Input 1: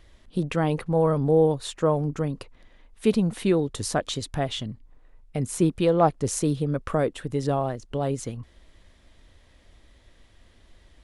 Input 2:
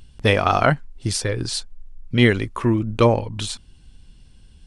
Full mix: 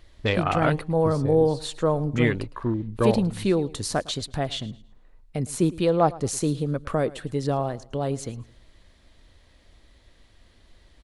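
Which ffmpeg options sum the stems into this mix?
-filter_complex "[0:a]volume=-0.5dB,asplit=2[a][b];[b]volume=-20dB[c];[1:a]afwtdn=0.0501,volume=-7dB[d];[c]aecho=0:1:109|218|327|436:1|0.3|0.09|0.027[e];[a][d][e]amix=inputs=3:normalize=0,equalizer=f=4.3k:w=5.3:g=5.5"

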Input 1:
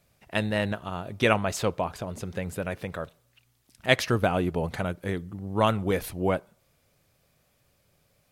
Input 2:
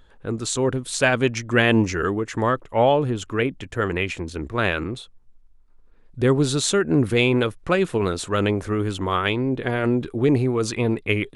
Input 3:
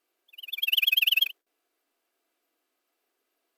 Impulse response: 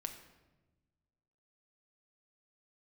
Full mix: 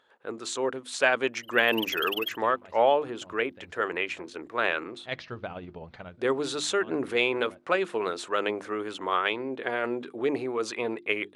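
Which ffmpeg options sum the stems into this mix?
-filter_complex "[0:a]tremolo=f=16:d=0.45,lowpass=f=4.7k:w=0.5412,lowpass=f=4.7k:w=1.3066,adelay=1200,volume=-9.5dB[a];[1:a]highpass=380,aemphasis=mode=reproduction:type=50kf,volume=-1.5dB,asplit=2[b][c];[2:a]adelay=1050,volume=-10dB[d];[c]apad=whole_len=419551[e];[a][e]sidechaincompress=threshold=-35dB:ratio=6:attack=6.3:release=266[f];[f][b][d]amix=inputs=3:normalize=0,lowshelf=f=480:g=-4,bandreject=f=50:t=h:w=6,bandreject=f=100:t=h:w=6,bandreject=f=150:t=h:w=6,bandreject=f=200:t=h:w=6,bandreject=f=250:t=h:w=6,bandreject=f=300:t=h:w=6,bandreject=f=350:t=h:w=6"

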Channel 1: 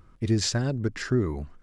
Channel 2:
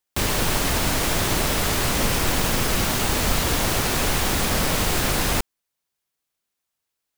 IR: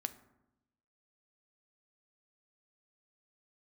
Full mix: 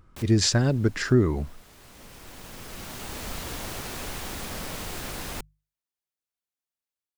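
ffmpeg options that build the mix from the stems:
-filter_complex "[0:a]volume=-2dB,asplit=2[a][b];[1:a]bandreject=f=50:t=h:w=6,bandreject=f=100:t=h:w=6,bandreject=f=150:t=h:w=6,volume=-19.5dB[c];[b]apad=whole_len=316262[d];[c][d]sidechaincompress=threshold=-42dB:ratio=12:attack=8.9:release=1360[e];[a][e]amix=inputs=2:normalize=0,dynaudnorm=f=110:g=5:m=6.5dB"

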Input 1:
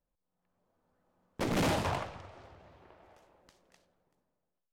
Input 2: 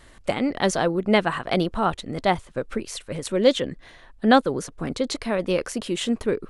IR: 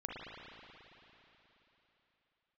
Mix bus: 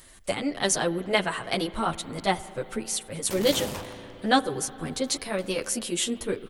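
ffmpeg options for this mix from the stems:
-filter_complex "[0:a]acompressor=threshold=-35dB:ratio=2.5,adelay=1900,volume=-2dB,asplit=2[a][b];[b]volume=-9.5dB[c];[1:a]asplit=2[d][e];[e]adelay=9,afreqshift=1[f];[d][f]amix=inputs=2:normalize=1,volume=-2.5dB,asplit=3[g][h][i];[h]volume=-15dB[j];[i]apad=whole_len=292288[k];[a][k]sidechaingate=range=-9dB:threshold=-44dB:ratio=16:detection=peak[l];[2:a]atrim=start_sample=2205[m];[c][j]amix=inputs=2:normalize=0[n];[n][m]afir=irnorm=-1:irlink=0[o];[l][g][o]amix=inputs=3:normalize=0,aemphasis=mode=production:type=75fm,acompressor=mode=upward:threshold=-52dB:ratio=2.5"

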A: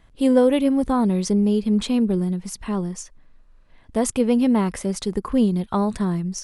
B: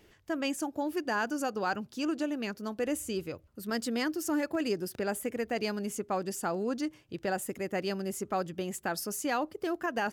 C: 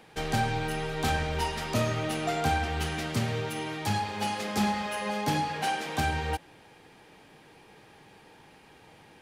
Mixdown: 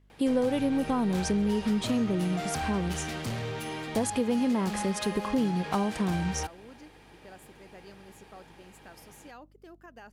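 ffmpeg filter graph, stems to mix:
-filter_complex "[0:a]highpass=55,agate=range=-15dB:threshold=-50dB:ratio=16:detection=peak,volume=-2.5dB[a];[1:a]aeval=exprs='val(0)+0.00794*(sin(2*PI*50*n/s)+sin(2*PI*2*50*n/s)/2+sin(2*PI*3*50*n/s)/3+sin(2*PI*4*50*n/s)/4+sin(2*PI*5*50*n/s)/5)':c=same,volume=-18dB[b];[2:a]asoftclip=type=tanh:threshold=-28dB,adelay=100,volume=-0.5dB[c];[a][b][c]amix=inputs=3:normalize=0,acompressor=threshold=-25dB:ratio=3"

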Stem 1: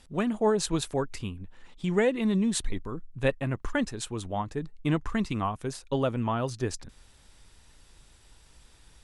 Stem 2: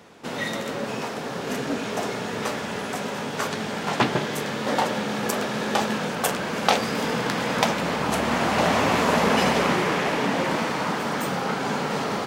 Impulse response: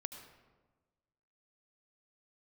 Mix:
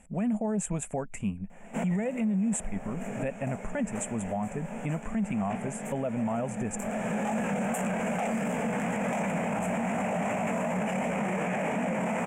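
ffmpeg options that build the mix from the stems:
-filter_complex "[0:a]acompressor=threshold=-27dB:ratio=6,volume=-2dB,asplit=2[a][b];[1:a]flanger=delay=16:depth=6.4:speed=2.7,adelay=1500,volume=0.5dB[c];[b]apad=whole_len=607103[d];[c][d]sidechaincompress=threshold=-45dB:ratio=10:attack=6.7:release=461[e];[a][e]amix=inputs=2:normalize=0,firequalizer=gain_entry='entry(130,0);entry(200,14);entry(310,-5);entry(650,10);entry(1100,-3);entry(2400,5);entry(4200,-28);entry(7400,9);entry(11000,-3)':delay=0.05:min_phase=1,alimiter=limit=-22.5dB:level=0:latency=1:release=21"

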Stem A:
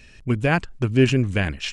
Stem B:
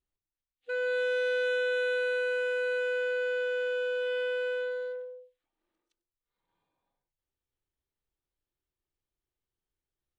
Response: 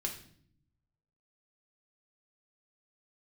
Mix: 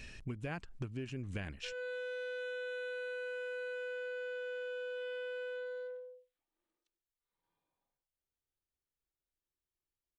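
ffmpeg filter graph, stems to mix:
-filter_complex "[0:a]tremolo=f=1.4:d=0.64,volume=-1dB[a];[1:a]adelay=950,volume=-6.5dB[b];[a][b]amix=inputs=2:normalize=0,acompressor=threshold=-38dB:ratio=10"

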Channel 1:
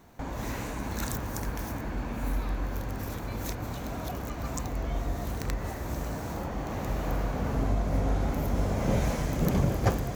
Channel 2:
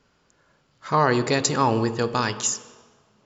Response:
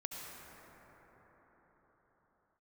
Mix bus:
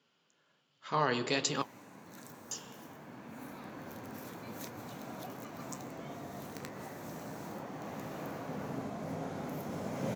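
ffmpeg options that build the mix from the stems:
-filter_complex "[0:a]adelay=1150,volume=-5dB,asplit=2[a][b];[b]volume=-9dB[c];[1:a]equalizer=f=3.1k:w=2.2:g=10.5,volume=-7dB,asplit=3[d][e][f];[d]atrim=end=1.62,asetpts=PTS-STARTPTS,afade=t=out:st=1.616:d=0.004:c=hsin[g];[e]atrim=start=1.62:end=2.51,asetpts=PTS-STARTPTS,volume=0[h];[f]atrim=start=2.51,asetpts=PTS-STARTPTS,afade=t=in:d=0.004:c=hsin[i];[g][h][i]concat=n=3:v=0:a=1,asplit=2[j][k];[k]apad=whole_len=498609[l];[a][l]sidechaincompress=threshold=-46dB:ratio=8:attack=34:release=1240[m];[2:a]atrim=start_sample=2205[n];[c][n]afir=irnorm=-1:irlink=0[o];[m][j][o]amix=inputs=3:normalize=0,highpass=f=140:w=0.5412,highpass=f=140:w=1.3066,flanger=delay=7.1:depth=8:regen=-61:speed=1.3:shape=sinusoidal"

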